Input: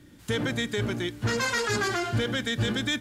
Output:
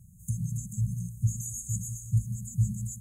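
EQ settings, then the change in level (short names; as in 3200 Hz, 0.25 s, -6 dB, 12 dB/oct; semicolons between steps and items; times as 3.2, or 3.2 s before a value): brick-wall FIR band-stop 200–6300 Hz; notch 7400 Hz, Q 26; +3.5 dB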